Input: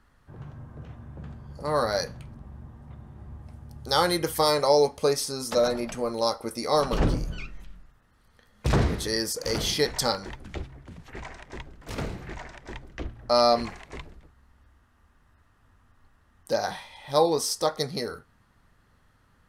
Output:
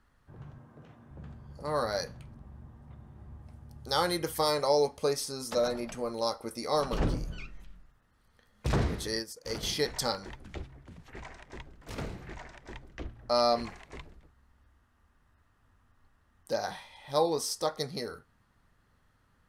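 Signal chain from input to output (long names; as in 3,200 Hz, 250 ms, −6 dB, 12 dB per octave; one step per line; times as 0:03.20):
0:00.58–0:01.11: high-pass filter 170 Hz 12 dB per octave
0:09.19–0:09.63: expander for the loud parts 2.5 to 1, over −36 dBFS
level −5.5 dB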